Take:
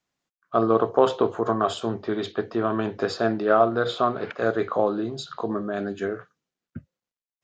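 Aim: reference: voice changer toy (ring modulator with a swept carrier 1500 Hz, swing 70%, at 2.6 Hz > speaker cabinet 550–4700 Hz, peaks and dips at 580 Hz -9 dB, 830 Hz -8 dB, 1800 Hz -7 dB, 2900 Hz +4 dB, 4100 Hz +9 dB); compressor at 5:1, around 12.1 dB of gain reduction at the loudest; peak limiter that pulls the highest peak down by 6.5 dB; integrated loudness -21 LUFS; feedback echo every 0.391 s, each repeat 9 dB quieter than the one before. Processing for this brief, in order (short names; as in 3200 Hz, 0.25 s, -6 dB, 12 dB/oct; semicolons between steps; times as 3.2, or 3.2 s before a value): compressor 5:1, threshold -27 dBFS; limiter -22 dBFS; feedback echo 0.391 s, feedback 35%, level -9 dB; ring modulator with a swept carrier 1500 Hz, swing 70%, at 2.6 Hz; speaker cabinet 550–4700 Hz, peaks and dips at 580 Hz -9 dB, 830 Hz -8 dB, 1800 Hz -7 dB, 2900 Hz +4 dB, 4100 Hz +9 dB; gain +14 dB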